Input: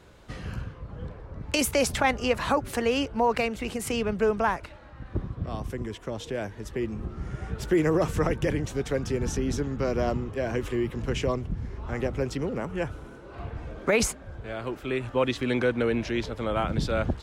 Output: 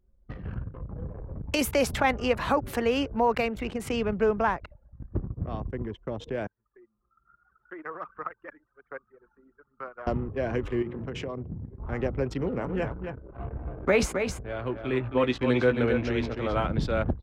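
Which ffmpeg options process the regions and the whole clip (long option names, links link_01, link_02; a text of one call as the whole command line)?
ffmpeg -i in.wav -filter_complex "[0:a]asettb=1/sr,asplit=3[link_01][link_02][link_03];[link_01]atrim=end=0.744[link_04];[link_02]atrim=start=0.74:end=3.65,asetpts=PTS-STARTPTS,afade=type=in:duration=0.004:curve=qsin,afade=type=out:start_time=2.906:duration=0.004:curve=qsin,equalizer=frequency=13000:width_type=o:width=0.61:gain=8.5,acompressor=mode=upward:threshold=-30dB:ratio=2.5:attack=3.2:release=140:knee=2.83:detection=peak[link_05];[link_03]atrim=start=3.646[link_06];[link_04][link_05]acrossfade=duration=0.004:curve1=hsin:curve2=qsin[link_07];[link_07][link_06]acrossfade=duration=0.004:curve1=qsin:curve2=hsin,asettb=1/sr,asplit=3[link_08][link_09][link_10];[link_08]atrim=end=6.474[link_11];[link_09]atrim=start=6.47:end=10.07,asetpts=PTS-STARTPTS,afade=type=in:duration=0.004:curve=qsin,afade=type=out:start_time=3.596:duration=0.004:curve=qsin,aphaser=in_gain=1:out_gain=1:delay=3.6:decay=0.33:speed=1.2:type=sinusoidal,bandpass=frequency=1300:width_type=q:width=3[link_12];[link_10]atrim=start=10.066[link_13];[link_11][link_12]acrossfade=duration=0.004:curve1=hsin:curve2=qsin[link_14];[link_14][link_13]acrossfade=duration=0.004:curve1=qsin:curve2=hsin,asettb=1/sr,asplit=3[link_15][link_16][link_17];[link_15]atrim=end=10.824[link_18];[link_16]atrim=start=10.82:end=11.8,asetpts=PTS-STARTPTS,afade=type=in:duration=0.004:curve=qsin,afade=type=out:start_time=0.976:duration=0.004:curve=qsin,highpass=92,bandreject=frequency=60:width_type=h:width=6,bandreject=frequency=120:width_type=h:width=6,bandreject=frequency=180:width_type=h:width=6,bandreject=frequency=240:width_type=h:width=6,bandreject=frequency=300:width_type=h:width=6,bandreject=frequency=360:width_type=h:width=6,bandreject=frequency=420:width_type=h:width=6,bandreject=frequency=480:width_type=h:width=6,acompressor=threshold=-29dB:ratio=10:attack=3.2:release=140:knee=1:detection=peak[link_19];[link_17]atrim=start=11.796[link_20];[link_18][link_19]acrossfade=duration=0.004:curve1=hsin:curve2=qsin[link_21];[link_21][link_20]acrossfade=duration=0.004:curve1=qsin:curve2=hsin,asettb=1/sr,asplit=3[link_22][link_23][link_24];[link_22]atrim=end=12.394[link_25];[link_23]atrim=start=12.39:end=16.67,asetpts=PTS-STARTPTS,afade=type=in:duration=0.004:curve=qsin,afade=type=out:start_time=4.276:duration=0.004:curve=qsin,asplit=2[link_26][link_27];[link_27]adelay=16,volume=-9dB[link_28];[link_26][link_28]amix=inputs=2:normalize=0,atrim=end_sample=188748,aecho=1:1:267:0.473,atrim=end_sample=188748[link_29];[link_24]atrim=start=16.666[link_30];[link_25][link_29]acrossfade=duration=0.004:curve1=hsin:curve2=qsin[link_31];[link_31][link_30]acrossfade=duration=0.004:curve1=qsin:curve2=hsin,anlmdn=1,equalizer=frequency=10000:width=0.49:gain=-9.5" out.wav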